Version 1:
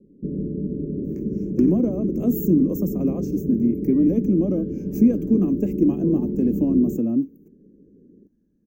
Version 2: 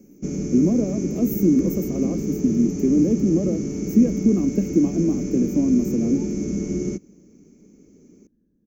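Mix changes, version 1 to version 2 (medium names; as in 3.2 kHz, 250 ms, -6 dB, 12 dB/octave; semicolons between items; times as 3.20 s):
speech: entry -1.05 s; first sound: remove Chebyshev low-pass 550 Hz, order 6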